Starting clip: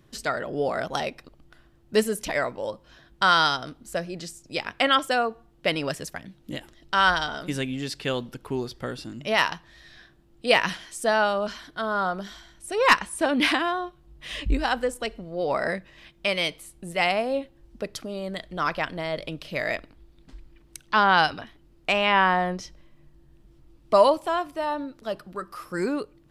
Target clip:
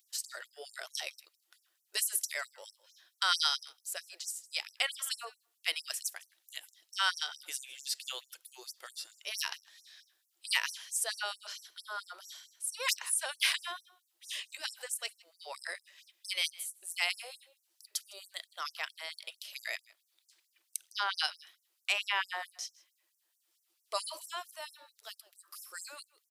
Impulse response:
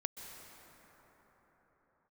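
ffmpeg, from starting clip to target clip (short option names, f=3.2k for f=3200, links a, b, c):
-af "aderivative,aecho=1:1:157:0.075,afftfilt=real='re*gte(b*sr/1024,300*pow(5600/300,0.5+0.5*sin(2*PI*4.5*pts/sr)))':imag='im*gte(b*sr/1024,300*pow(5600/300,0.5+0.5*sin(2*PI*4.5*pts/sr)))':win_size=1024:overlap=0.75,volume=3dB"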